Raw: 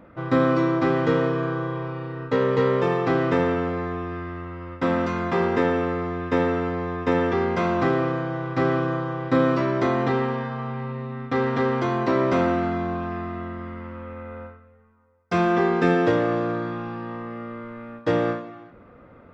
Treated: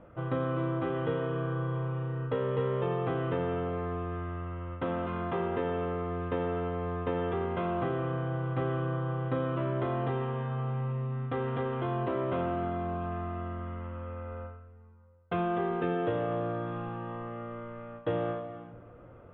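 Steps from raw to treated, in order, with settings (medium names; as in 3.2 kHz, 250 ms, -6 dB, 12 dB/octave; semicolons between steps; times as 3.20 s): elliptic low-pass 3.2 kHz, stop band 40 dB; on a send at -14 dB: reverberation RT60 1.7 s, pre-delay 3 ms; on the sum: compression 2:1, threshold -28 dBFS, peak gain reduction 7.5 dB; ten-band graphic EQ 250 Hz -9 dB, 1 kHz -4 dB, 2 kHz -10 dB; trim +1 dB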